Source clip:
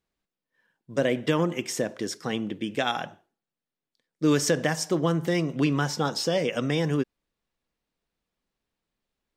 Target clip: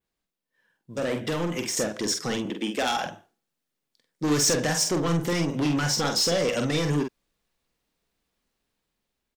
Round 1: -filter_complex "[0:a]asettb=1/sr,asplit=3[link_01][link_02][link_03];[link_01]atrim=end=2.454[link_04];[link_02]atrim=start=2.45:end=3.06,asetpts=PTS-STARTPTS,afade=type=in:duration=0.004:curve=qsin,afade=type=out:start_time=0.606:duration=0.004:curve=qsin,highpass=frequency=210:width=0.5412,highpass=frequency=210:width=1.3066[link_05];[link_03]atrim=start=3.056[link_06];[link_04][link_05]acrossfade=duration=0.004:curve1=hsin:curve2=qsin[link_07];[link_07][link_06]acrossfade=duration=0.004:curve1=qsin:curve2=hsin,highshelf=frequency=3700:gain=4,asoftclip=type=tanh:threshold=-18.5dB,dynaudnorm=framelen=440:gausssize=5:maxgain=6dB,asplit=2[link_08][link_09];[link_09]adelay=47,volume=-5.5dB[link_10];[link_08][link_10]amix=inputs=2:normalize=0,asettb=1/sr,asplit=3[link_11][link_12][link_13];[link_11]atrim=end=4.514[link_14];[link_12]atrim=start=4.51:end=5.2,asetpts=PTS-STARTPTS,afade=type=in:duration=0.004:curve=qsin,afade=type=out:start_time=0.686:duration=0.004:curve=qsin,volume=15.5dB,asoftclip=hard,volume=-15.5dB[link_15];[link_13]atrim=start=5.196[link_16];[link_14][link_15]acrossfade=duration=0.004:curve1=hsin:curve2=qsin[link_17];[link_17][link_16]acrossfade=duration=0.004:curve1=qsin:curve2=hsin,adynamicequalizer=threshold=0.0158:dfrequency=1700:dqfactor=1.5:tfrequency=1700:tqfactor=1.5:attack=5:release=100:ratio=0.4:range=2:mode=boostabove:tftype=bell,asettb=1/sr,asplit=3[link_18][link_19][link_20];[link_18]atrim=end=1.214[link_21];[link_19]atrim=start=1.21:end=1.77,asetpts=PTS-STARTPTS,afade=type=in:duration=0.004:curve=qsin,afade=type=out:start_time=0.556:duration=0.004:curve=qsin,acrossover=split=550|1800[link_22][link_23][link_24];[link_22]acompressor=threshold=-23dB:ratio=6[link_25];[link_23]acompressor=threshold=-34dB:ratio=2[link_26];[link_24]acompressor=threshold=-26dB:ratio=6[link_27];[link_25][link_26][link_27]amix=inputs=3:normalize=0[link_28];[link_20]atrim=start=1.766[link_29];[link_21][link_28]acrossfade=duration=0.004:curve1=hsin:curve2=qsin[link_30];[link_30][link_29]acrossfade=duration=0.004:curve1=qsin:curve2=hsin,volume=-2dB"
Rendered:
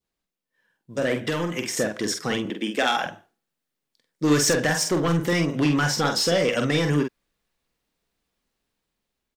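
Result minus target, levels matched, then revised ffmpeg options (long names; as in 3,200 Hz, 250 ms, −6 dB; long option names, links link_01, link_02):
soft clipping: distortion −6 dB; 2,000 Hz band +3.5 dB
-filter_complex "[0:a]asettb=1/sr,asplit=3[link_01][link_02][link_03];[link_01]atrim=end=2.454[link_04];[link_02]atrim=start=2.45:end=3.06,asetpts=PTS-STARTPTS,afade=type=in:duration=0.004:curve=qsin,afade=type=out:start_time=0.606:duration=0.004:curve=qsin,highpass=frequency=210:width=0.5412,highpass=frequency=210:width=1.3066[link_05];[link_03]atrim=start=3.056[link_06];[link_04][link_05]acrossfade=duration=0.004:curve1=hsin:curve2=qsin[link_07];[link_07][link_06]acrossfade=duration=0.004:curve1=qsin:curve2=hsin,highshelf=frequency=3700:gain=4,asoftclip=type=tanh:threshold=-25dB,dynaudnorm=framelen=440:gausssize=5:maxgain=6dB,asplit=2[link_08][link_09];[link_09]adelay=47,volume=-5.5dB[link_10];[link_08][link_10]amix=inputs=2:normalize=0,asettb=1/sr,asplit=3[link_11][link_12][link_13];[link_11]atrim=end=4.514[link_14];[link_12]atrim=start=4.51:end=5.2,asetpts=PTS-STARTPTS,afade=type=in:duration=0.004:curve=qsin,afade=type=out:start_time=0.686:duration=0.004:curve=qsin,volume=15.5dB,asoftclip=hard,volume=-15.5dB[link_15];[link_13]atrim=start=5.196[link_16];[link_14][link_15]acrossfade=duration=0.004:curve1=hsin:curve2=qsin[link_17];[link_17][link_16]acrossfade=duration=0.004:curve1=qsin:curve2=hsin,adynamicequalizer=threshold=0.0158:dfrequency=6200:dqfactor=1.5:tfrequency=6200:tqfactor=1.5:attack=5:release=100:ratio=0.4:range=2:mode=boostabove:tftype=bell,asettb=1/sr,asplit=3[link_18][link_19][link_20];[link_18]atrim=end=1.214[link_21];[link_19]atrim=start=1.21:end=1.77,asetpts=PTS-STARTPTS,afade=type=in:duration=0.004:curve=qsin,afade=type=out:start_time=0.556:duration=0.004:curve=qsin,acrossover=split=550|1800[link_22][link_23][link_24];[link_22]acompressor=threshold=-23dB:ratio=6[link_25];[link_23]acompressor=threshold=-34dB:ratio=2[link_26];[link_24]acompressor=threshold=-26dB:ratio=6[link_27];[link_25][link_26][link_27]amix=inputs=3:normalize=0[link_28];[link_20]atrim=start=1.766[link_29];[link_21][link_28]acrossfade=duration=0.004:curve1=hsin:curve2=qsin[link_30];[link_30][link_29]acrossfade=duration=0.004:curve1=qsin:curve2=hsin,volume=-2dB"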